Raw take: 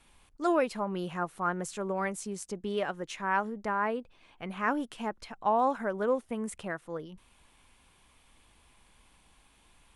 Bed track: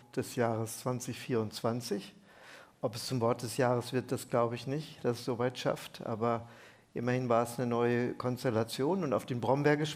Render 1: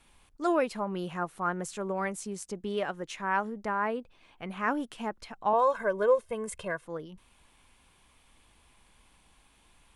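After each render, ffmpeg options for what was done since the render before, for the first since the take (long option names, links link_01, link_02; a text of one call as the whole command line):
ffmpeg -i in.wav -filter_complex "[0:a]asettb=1/sr,asplit=3[link_01][link_02][link_03];[link_01]atrim=end=5.534[link_04];[link_02]atrim=start=5.53:end=6.85,asetpts=PTS-STARTPTS,afade=type=in:duration=0.004:curve=qsin,afade=type=out:start_time=1.316:duration=0.004:curve=qsin,aecho=1:1:1.9:0.87,atrim=end_sample=58212[link_05];[link_03]atrim=start=6.846[link_06];[link_04][link_05]acrossfade=duration=0.004:curve1=hsin:curve2=qsin[link_07];[link_07][link_06]acrossfade=duration=0.004:curve1=qsin:curve2=hsin" out.wav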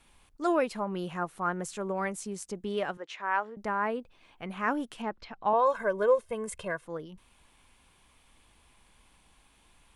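ffmpeg -i in.wav -filter_complex "[0:a]asettb=1/sr,asplit=3[link_01][link_02][link_03];[link_01]atrim=end=2.974[link_04];[link_02]atrim=start=2.97:end=3.57,asetpts=PTS-STARTPTS,afade=type=in:duration=0.004:curve=qsin,afade=type=out:start_time=0.596:duration=0.004:curve=qsin,highpass=460,lowpass=4300[link_05];[link_03]atrim=start=3.566[link_06];[link_04][link_05]acrossfade=duration=0.004:curve1=hsin:curve2=qsin[link_07];[link_07][link_06]acrossfade=duration=0.004:curve1=qsin:curve2=hsin,asettb=1/sr,asplit=3[link_08][link_09][link_10];[link_08]atrim=end=5.024[link_11];[link_09]atrim=start=5.02:end=5.66,asetpts=PTS-STARTPTS,afade=type=in:duration=0.004:curve=qsin,afade=type=out:start_time=0.636:duration=0.004:curve=qsin,lowpass=frequency=5000:width=0.5412,lowpass=frequency=5000:width=1.3066[link_12];[link_10]atrim=start=5.656[link_13];[link_11][link_12]acrossfade=duration=0.004:curve1=hsin:curve2=qsin[link_14];[link_14][link_13]acrossfade=duration=0.004:curve1=qsin:curve2=hsin" out.wav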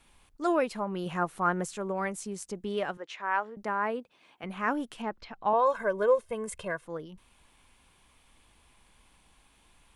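ffmpeg -i in.wav -filter_complex "[0:a]asettb=1/sr,asplit=3[link_01][link_02][link_03];[link_01]atrim=end=3.634[link_04];[link_02]atrim=start=3.63:end=4.44,asetpts=PTS-STARTPTS,afade=type=in:duration=0.004:curve=qsin,afade=type=out:start_time=0.806:duration=0.004:curve=qsin,highpass=180[link_05];[link_03]atrim=start=4.436[link_06];[link_04][link_05]acrossfade=duration=0.004:curve1=hsin:curve2=qsin[link_07];[link_07][link_06]acrossfade=duration=0.004:curve1=qsin:curve2=hsin,asplit=3[link_08][link_09][link_10];[link_08]atrim=end=1.062[link_11];[link_09]atrim=start=1.058:end=1.652,asetpts=PTS-STARTPTS,volume=3.5dB[link_12];[link_10]atrim=start=1.648[link_13];[link_11][link_12]acrossfade=duration=0.004:curve1=hsin:curve2=hsin[link_14];[link_14][link_13]acrossfade=duration=0.004:curve1=hsin:curve2=hsin" out.wav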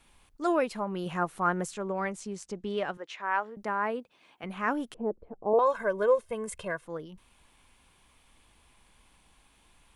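ffmpeg -i in.wav -filter_complex "[0:a]asettb=1/sr,asplit=3[link_01][link_02][link_03];[link_01]atrim=end=1.744[link_04];[link_02]atrim=start=1.74:end=2.94,asetpts=PTS-STARTPTS,afade=type=in:duration=0.004:curve=qsin,afade=type=out:start_time=1.196:duration=0.004:curve=qsin,lowpass=7100[link_05];[link_03]atrim=start=2.936[link_06];[link_04][link_05]acrossfade=duration=0.004:curve1=hsin:curve2=qsin[link_07];[link_07][link_06]acrossfade=duration=0.004:curve1=qsin:curve2=hsin,asettb=1/sr,asplit=3[link_08][link_09][link_10];[link_08]atrim=end=4.944[link_11];[link_09]atrim=start=4.94:end=5.59,asetpts=PTS-STARTPTS,afade=type=in:duration=0.004:curve=qsin,afade=type=out:start_time=0.646:duration=0.004:curve=qsin,lowpass=frequency=460:width_type=q:width=3.3[link_12];[link_10]atrim=start=5.586[link_13];[link_11][link_12]acrossfade=duration=0.004:curve1=hsin:curve2=qsin[link_14];[link_14][link_13]acrossfade=duration=0.004:curve1=qsin:curve2=hsin" out.wav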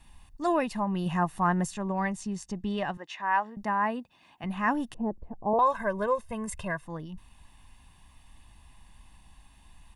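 ffmpeg -i in.wav -af "lowshelf=frequency=210:gain=8,aecho=1:1:1.1:0.62" out.wav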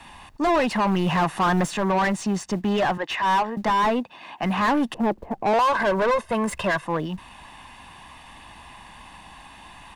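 ffmpeg -i in.wav -filter_complex "[0:a]asplit=2[link_01][link_02];[link_02]highpass=frequency=720:poles=1,volume=29dB,asoftclip=type=tanh:threshold=-12.5dB[link_03];[link_01][link_03]amix=inputs=2:normalize=0,lowpass=frequency=1600:poles=1,volume=-6dB,acrossover=split=140|810[link_04][link_05][link_06];[link_04]acrusher=bits=4:mode=log:mix=0:aa=0.000001[link_07];[link_07][link_05][link_06]amix=inputs=3:normalize=0" out.wav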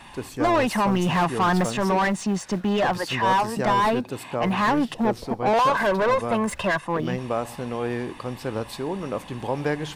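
ffmpeg -i in.wav -i bed.wav -filter_complex "[1:a]volume=2dB[link_01];[0:a][link_01]amix=inputs=2:normalize=0" out.wav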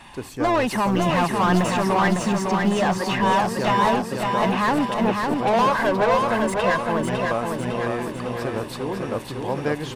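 ffmpeg -i in.wav -af "aecho=1:1:554|1108|1662|2216|2770|3324|3878:0.631|0.341|0.184|0.0994|0.0537|0.029|0.0156" out.wav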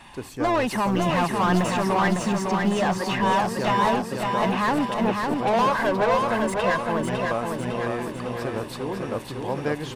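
ffmpeg -i in.wav -af "volume=-2dB" out.wav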